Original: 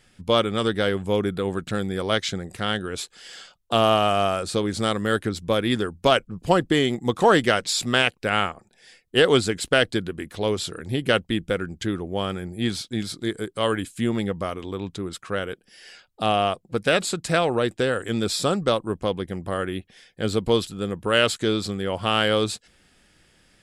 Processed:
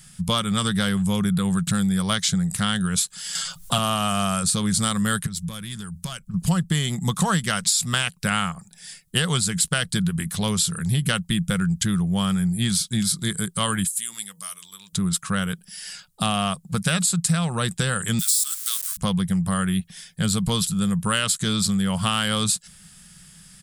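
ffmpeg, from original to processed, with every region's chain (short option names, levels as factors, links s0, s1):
-filter_complex "[0:a]asettb=1/sr,asplit=3[s0][s1][s2];[s0]atrim=end=3.354[s3];[s1]atrim=start=3.35:end=3.78,asetpts=PTS-STARTPTS,afade=t=in:d=0.004:c=qsin,afade=t=out:st=0.426:d=0.004:c=qsin,aecho=1:1:7.4:0.78,atrim=end_sample=18963,acompressor=mode=upward:threshold=0.0316:ratio=2.5:attack=3.2:release=140:knee=2.83:detection=peak[s4];[s2]atrim=start=3.776[s5];[s3][s4]acrossfade=d=0.004:c1=hsin:c2=qsin[s6];[s6][s5]acrossfade=d=0.004:c1=qsin:c2=hsin,asettb=1/sr,asplit=3[s7][s8][s9];[s7]atrim=end=5.264[s10];[s8]atrim=start=5.26:end=6.34,asetpts=PTS-STARTPTS,afade=t=in:d=0.004:c=qsin,afade=t=out:st=1.076:d=0.004:c=qsin,equalizer=f=540:w=0.34:g=-5.5,acompressor=threshold=0.01:ratio=2.5:attack=3.2:release=140:knee=1:detection=peak,aeval=exprs='(tanh(17.8*val(0)+0.3)-tanh(0.3))/17.8':c=same[s11];[s9]atrim=start=6.336[s12];[s10][s11]acrossfade=d=0.004:c1=hsin:c2=qsin[s13];[s13][s12]acrossfade=d=0.004:c1=qsin:c2=hsin,asettb=1/sr,asplit=3[s14][s15][s16];[s14]atrim=end=13.874[s17];[s15]atrim=start=13.87:end=14.93,asetpts=PTS-STARTPTS,afade=t=in:d=0.004:c=qsin,afade=t=out:st=1.056:d=0.004:c=qsin,aderivative,bandreject=f=60:t=h:w=6,bandreject=f=120:t=h:w=6,bandreject=f=180:t=h:w=6,bandreject=f=240:t=h:w=6,bandreject=f=300:t=h:w=6,bandreject=f=360:t=h:w=6,bandreject=f=420:t=h:w=6,bandreject=f=480:t=h:w=6,bandreject=f=540:t=h:w=6,bandreject=f=600:t=h:w=6[s18];[s16]atrim=start=14.926[s19];[s17][s18]acrossfade=d=0.004:c1=hsin:c2=qsin[s20];[s20][s19]acrossfade=d=0.004:c1=qsin:c2=hsin,asettb=1/sr,asplit=3[s21][s22][s23];[s21]atrim=end=18.194[s24];[s22]atrim=start=18.19:end=18.97,asetpts=PTS-STARTPTS,afade=t=in:d=0.004:c=qsin,afade=t=out:st=0.776:d=0.004:c=qsin,aeval=exprs='val(0)+0.5*0.0473*sgn(val(0))':c=same,highpass=f=1200:w=0.5412,highpass=f=1200:w=1.3066,aderivative[s25];[s23]atrim=start=18.966[s26];[s24][s25]acrossfade=d=0.004:c1=hsin:c2=qsin[s27];[s27][s26]acrossfade=d=0.004:c1=qsin:c2=hsin,firequalizer=gain_entry='entry(110,0);entry(170,13);entry(270,-14);entry(440,-14);entry(1100,-1);entry(2300,-4);entry(3400,1);entry(9100,14);entry(13000,11)':delay=0.05:min_phase=1,acompressor=threshold=0.0562:ratio=6,volume=2.11"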